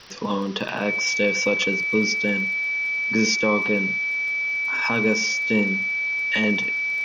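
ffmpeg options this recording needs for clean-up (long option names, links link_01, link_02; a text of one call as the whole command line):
ffmpeg -i in.wav -af "adeclick=threshold=4,bandreject=frequency=2300:width=30,afwtdn=0.0089" out.wav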